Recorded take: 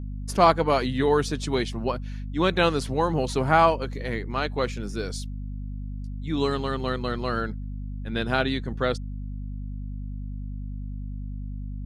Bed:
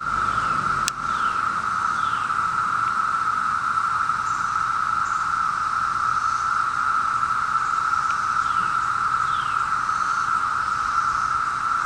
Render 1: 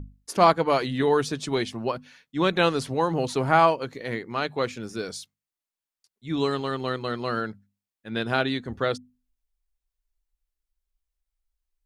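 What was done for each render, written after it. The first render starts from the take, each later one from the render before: notches 50/100/150/200/250 Hz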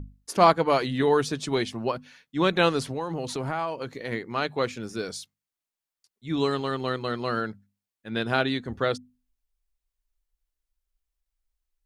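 2.84–4.12 compressor 4:1, threshold -27 dBFS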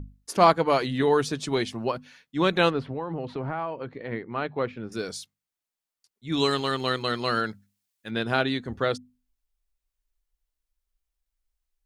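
2.7–4.92 air absorption 410 m; 6.32–8.11 high shelf 2000 Hz +10 dB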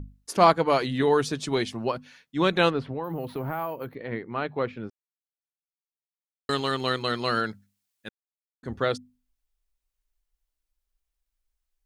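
3.04–3.95 careless resampling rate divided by 3×, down none, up hold; 4.9–6.49 mute; 8.09–8.63 mute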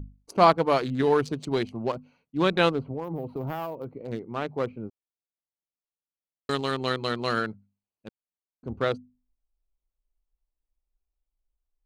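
Wiener smoothing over 25 samples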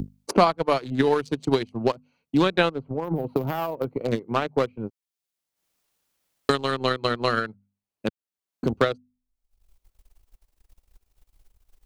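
transient shaper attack +10 dB, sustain -10 dB; three-band squash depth 70%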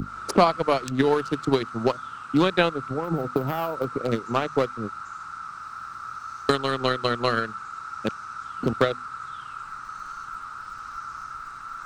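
add bed -14.5 dB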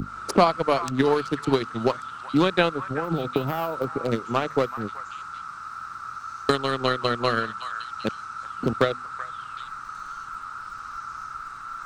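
delay with a stepping band-pass 0.379 s, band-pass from 1300 Hz, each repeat 1.4 oct, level -8.5 dB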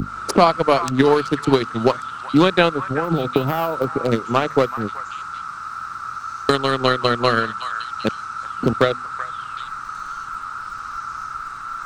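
gain +6 dB; limiter -1 dBFS, peak gain reduction 3 dB

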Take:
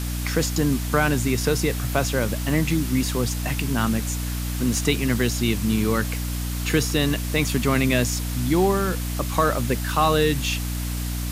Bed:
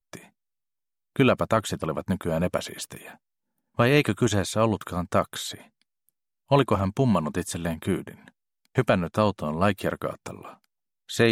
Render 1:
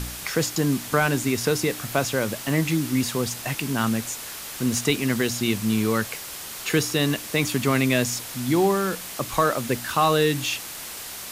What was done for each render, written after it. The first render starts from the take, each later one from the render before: de-hum 60 Hz, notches 5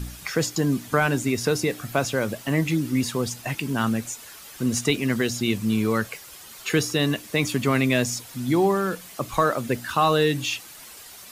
denoiser 10 dB, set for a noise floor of -36 dBFS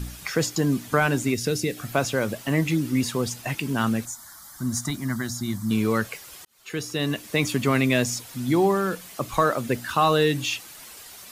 1.34–1.77 bell 1000 Hz -14 dB 1.2 oct; 4.05–5.71 fixed phaser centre 1100 Hz, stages 4; 6.45–7.31 fade in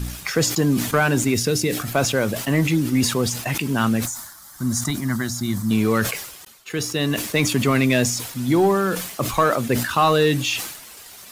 sample leveller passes 1; sustainer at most 67 dB/s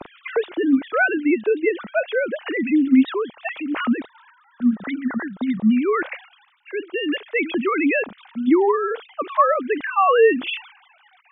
sine-wave speech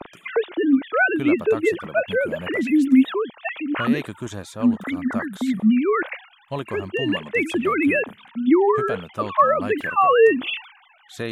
add bed -9 dB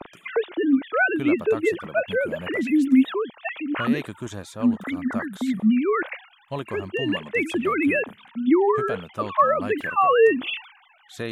gain -2 dB

